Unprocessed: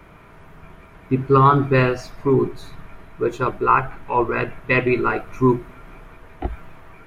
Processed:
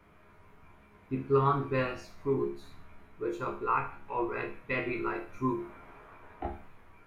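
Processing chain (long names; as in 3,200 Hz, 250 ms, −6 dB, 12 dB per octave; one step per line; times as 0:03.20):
0:05.58–0:06.50: parametric band 830 Hz +8.5 dB 2.8 octaves
resonators tuned to a chord C#2 major, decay 0.42 s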